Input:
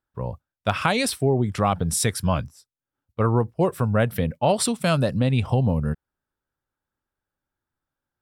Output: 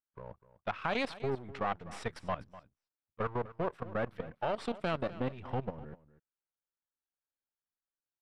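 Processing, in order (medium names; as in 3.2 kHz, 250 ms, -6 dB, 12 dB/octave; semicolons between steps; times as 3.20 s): partial rectifier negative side -12 dB; low-pass 2.7 kHz 12 dB/octave; bass shelf 240 Hz -11.5 dB; level held to a coarse grid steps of 15 dB; on a send: delay 249 ms -17 dB; on the sum: trim -1.5 dB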